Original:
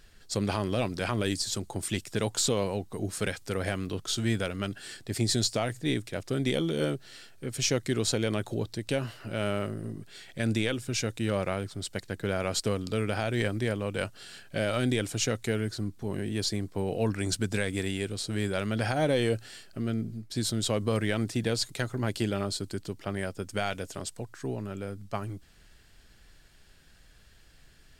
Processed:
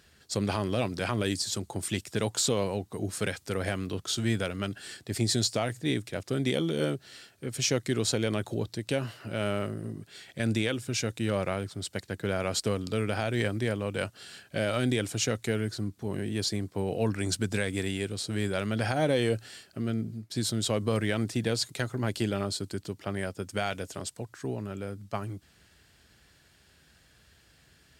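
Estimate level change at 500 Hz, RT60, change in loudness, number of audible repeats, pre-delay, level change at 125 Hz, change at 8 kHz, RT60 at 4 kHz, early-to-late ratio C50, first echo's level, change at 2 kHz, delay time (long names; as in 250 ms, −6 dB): 0.0 dB, no reverb audible, 0.0 dB, no echo audible, no reverb audible, 0.0 dB, 0.0 dB, no reverb audible, no reverb audible, no echo audible, 0.0 dB, no echo audible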